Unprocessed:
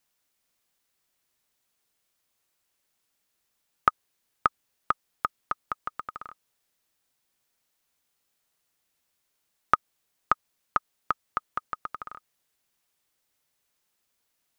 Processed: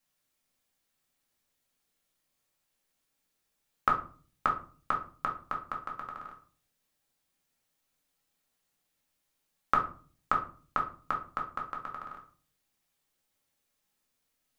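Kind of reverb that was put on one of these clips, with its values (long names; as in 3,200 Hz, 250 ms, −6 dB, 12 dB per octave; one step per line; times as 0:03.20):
rectangular room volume 290 cubic metres, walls furnished, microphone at 2.2 metres
level −6 dB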